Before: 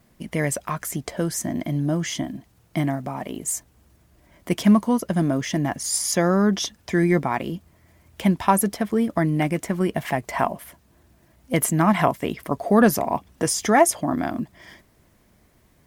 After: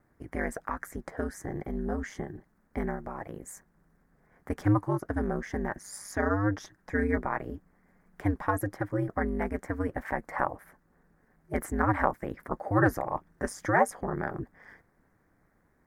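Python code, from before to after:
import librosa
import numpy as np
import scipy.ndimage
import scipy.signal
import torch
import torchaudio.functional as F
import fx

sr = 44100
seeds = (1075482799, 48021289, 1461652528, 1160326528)

y = fx.high_shelf_res(x, sr, hz=2200.0, db=-9.5, q=3.0)
y = y * np.sin(2.0 * np.pi * 100.0 * np.arange(len(y)) / sr)
y = y * librosa.db_to_amplitude(-6.0)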